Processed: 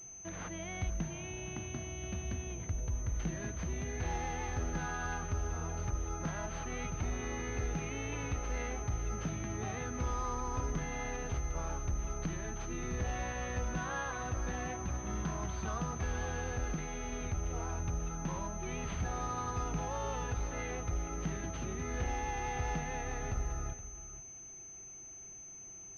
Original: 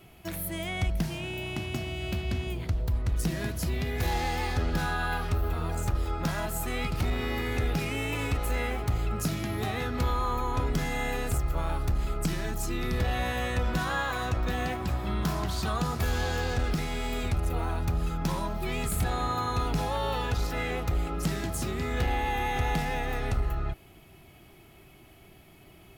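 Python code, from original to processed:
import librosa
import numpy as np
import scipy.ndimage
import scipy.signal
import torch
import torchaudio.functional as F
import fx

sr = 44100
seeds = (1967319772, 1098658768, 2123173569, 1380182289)

p1 = x + fx.echo_single(x, sr, ms=472, db=-14.0, dry=0)
p2 = fx.pwm(p1, sr, carrier_hz=6200.0)
y = p2 * librosa.db_to_amplitude(-8.0)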